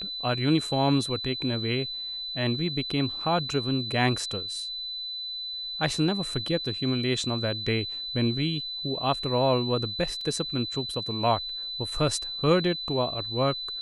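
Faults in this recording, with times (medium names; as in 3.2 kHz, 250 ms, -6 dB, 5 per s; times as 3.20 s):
whine 4 kHz -32 dBFS
10.21 s: dropout 3.2 ms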